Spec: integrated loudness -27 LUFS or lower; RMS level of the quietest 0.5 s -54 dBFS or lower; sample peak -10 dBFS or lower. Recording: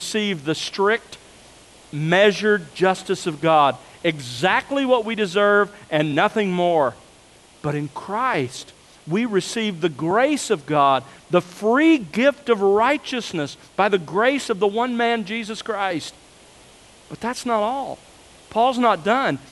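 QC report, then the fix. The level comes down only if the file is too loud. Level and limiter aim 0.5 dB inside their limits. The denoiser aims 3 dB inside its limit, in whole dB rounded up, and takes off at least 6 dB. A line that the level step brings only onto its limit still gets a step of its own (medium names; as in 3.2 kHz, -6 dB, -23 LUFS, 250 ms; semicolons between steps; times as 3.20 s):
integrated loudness -20.5 LUFS: fail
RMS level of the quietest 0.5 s -50 dBFS: fail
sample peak -5.5 dBFS: fail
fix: trim -7 dB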